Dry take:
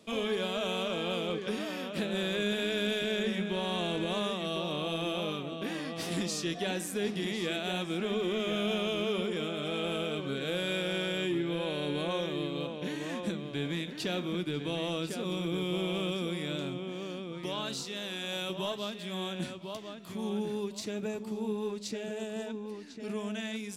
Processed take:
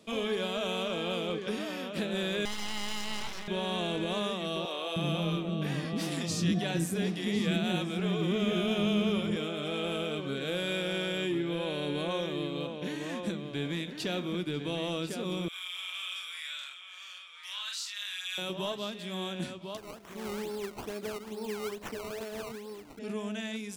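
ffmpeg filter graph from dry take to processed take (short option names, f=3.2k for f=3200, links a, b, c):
-filter_complex "[0:a]asettb=1/sr,asplit=3[a][b][c];[a]atrim=end=2.454[d];[b]atrim=start=2.45:end=3.48,asetpts=PTS-STARTPTS,afade=t=in:d=0.004:c=qsin,afade=t=out:st=1.026:d=0.004:c=qsin,highpass=440,lowpass=7.1k,aeval=exprs='abs(val(0))':c=same[e];[c]atrim=start=3.476[f];[d][e]acrossfade=d=0.004:c1=hsin:c2=qsin[g];[g][f]acrossfade=d=0.004:c1=qsin:c2=hsin,asettb=1/sr,asplit=3[h][i][j];[h]atrim=end=4.654[k];[i]atrim=start=4.65:end=9.36,asetpts=PTS-STARTPTS,afade=t=in:d=0.004:c=qsin,afade=t=out:st=4.706:d=0.004:c=qsin,equalizer=f=120:t=o:w=1.8:g=11.5,acrossover=split=400[l][m];[l]adelay=310[n];[n][m]amix=inputs=2:normalize=0,atrim=end_sample=207711[o];[j]atrim=start=9.356[p];[k][o]acrossfade=d=0.004:c1=hsin:c2=qsin[q];[q][p]acrossfade=d=0.004:c1=qsin:c2=hsin,asettb=1/sr,asplit=3[r][s][t];[r]atrim=end=15.484[u];[s]atrim=start=15.48:end=18.38,asetpts=PTS-STARTPTS,afade=t=in:d=0.004:c=qsin,afade=t=out:st=2.896:d=0.004:c=qsin,highpass=f=1.4k:w=0.5412,highpass=f=1.4k:w=1.3066,asplit=2[v][w];[w]adelay=44,volume=-2.5dB[x];[v][x]amix=inputs=2:normalize=0,atrim=end_sample=127890[y];[t]atrim=start=18.376[z];[u][y]acrossfade=d=0.004:c1=hsin:c2=qsin[aa];[aa][z]acrossfade=d=0.004:c1=qsin:c2=hsin,asettb=1/sr,asplit=3[ab][ac][ad];[ab]atrim=end=19.774[ae];[ac]atrim=start=19.77:end=22.99,asetpts=PTS-STARTPTS,afade=t=in:d=0.004:c=qsin,afade=t=out:st=3.216:d=0.004:c=qsin,highpass=290,acrusher=samples=18:mix=1:aa=0.000001:lfo=1:lforange=18:lforate=2.3[af];[ad]atrim=start=22.986[ag];[ae][af]acrossfade=d=0.004:c1=hsin:c2=qsin[ah];[ah][ag]acrossfade=d=0.004:c1=qsin:c2=hsin"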